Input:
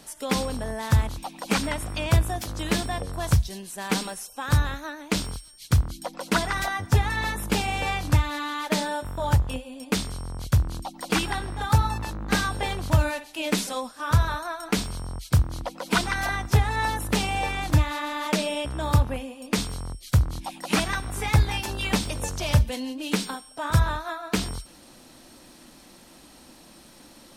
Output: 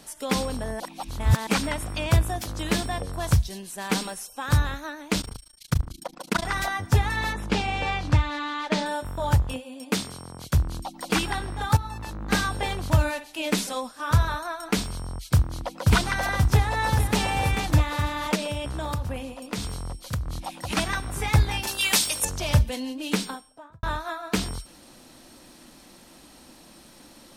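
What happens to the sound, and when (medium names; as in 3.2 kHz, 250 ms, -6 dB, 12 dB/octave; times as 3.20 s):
0.80–1.47 s: reverse
5.21–6.45 s: AM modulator 27 Hz, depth 95%
7.33–8.86 s: low-pass 5.2 kHz
9.53–10.55 s: high-pass 140 Hz
11.77–12.28 s: fade in, from -13.5 dB
15.33–15.90 s: echo throw 530 ms, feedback 80%, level -0.5 dB
16.51–17.21 s: echo throw 440 ms, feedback 15%, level -7.5 dB
18.35–20.77 s: compression, threshold -25 dBFS
21.67–22.25 s: tilt EQ +4 dB/octave
23.18–23.83 s: studio fade out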